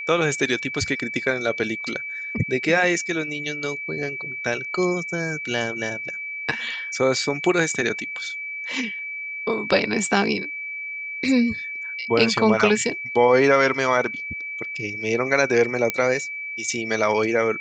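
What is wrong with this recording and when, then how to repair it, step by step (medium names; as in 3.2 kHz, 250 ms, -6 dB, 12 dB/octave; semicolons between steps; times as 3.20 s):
whine 2.3 kHz -29 dBFS
15.90 s: pop -7 dBFS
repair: de-click; band-stop 2.3 kHz, Q 30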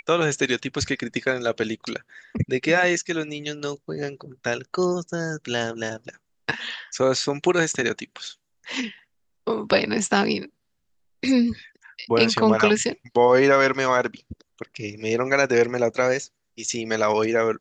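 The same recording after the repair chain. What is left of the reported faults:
nothing left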